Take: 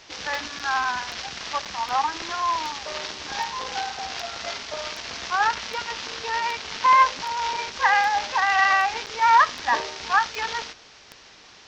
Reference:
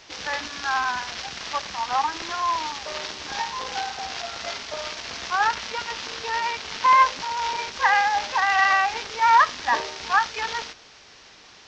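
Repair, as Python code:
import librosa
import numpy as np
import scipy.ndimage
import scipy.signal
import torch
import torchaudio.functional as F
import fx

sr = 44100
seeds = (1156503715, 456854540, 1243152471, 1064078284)

y = fx.fix_declick_ar(x, sr, threshold=10.0)
y = fx.fix_interpolate(y, sr, at_s=(0.59, 1.65, 9.06), length_ms=6.8)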